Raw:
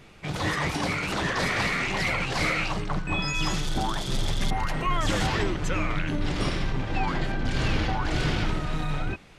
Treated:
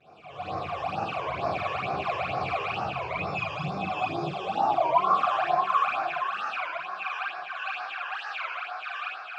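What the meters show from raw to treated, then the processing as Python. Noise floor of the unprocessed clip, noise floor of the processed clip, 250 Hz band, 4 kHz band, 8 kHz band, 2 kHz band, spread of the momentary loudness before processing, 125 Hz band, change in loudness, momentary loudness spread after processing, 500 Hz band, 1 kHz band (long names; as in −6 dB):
−39 dBFS, −41 dBFS, −10.5 dB, −8.5 dB, below −20 dB, −4.0 dB, 5 LU, −12.0 dB, −1.5 dB, 10 LU, +1.0 dB, +5.0 dB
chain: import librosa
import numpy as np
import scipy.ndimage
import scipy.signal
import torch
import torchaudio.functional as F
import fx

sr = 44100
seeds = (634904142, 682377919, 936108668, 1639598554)

p1 = x + 0.5 * 10.0 ** (-41.0 / 20.0) * np.sign(x)
p2 = fx.rev_schroeder(p1, sr, rt60_s=1.6, comb_ms=38, drr_db=-9.5)
p3 = fx.filter_sweep_highpass(p2, sr, from_hz=82.0, to_hz=1600.0, start_s=3.19, end_s=5.45, q=4.7)
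p4 = fx.vibrato(p3, sr, rate_hz=2.2, depth_cents=86.0)
p5 = fx.vowel_filter(p4, sr, vowel='a')
p6 = fx.peak_eq(p5, sr, hz=6200.0, db=-5.5, octaves=0.25)
p7 = p6 + fx.echo_feedback(p6, sr, ms=630, feedback_pct=47, wet_db=-3.0, dry=0)
p8 = fx.dynamic_eq(p7, sr, hz=120.0, q=1.6, threshold_db=-53.0, ratio=4.0, max_db=7)
p9 = fx.phaser_stages(p8, sr, stages=12, low_hz=220.0, high_hz=3000.0, hz=2.2, feedback_pct=25)
p10 = scipy.signal.sosfilt(scipy.signal.butter(4, 8400.0, 'lowpass', fs=sr, output='sos'), p9)
y = fx.record_warp(p10, sr, rpm=33.33, depth_cents=160.0)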